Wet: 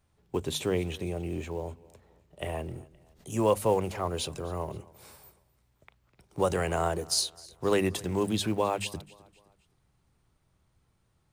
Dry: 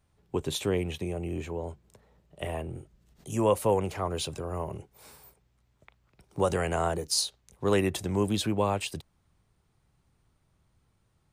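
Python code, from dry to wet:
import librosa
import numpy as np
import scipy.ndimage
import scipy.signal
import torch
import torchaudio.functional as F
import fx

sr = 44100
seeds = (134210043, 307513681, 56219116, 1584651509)

p1 = fx.quant_float(x, sr, bits=2)
p2 = x + F.gain(torch.from_numpy(p1), -8.5).numpy()
p3 = fx.hum_notches(p2, sr, base_hz=50, count=5)
p4 = fx.echo_feedback(p3, sr, ms=260, feedback_pct=42, wet_db=-22.5)
y = F.gain(torch.from_numpy(p4), -3.0).numpy()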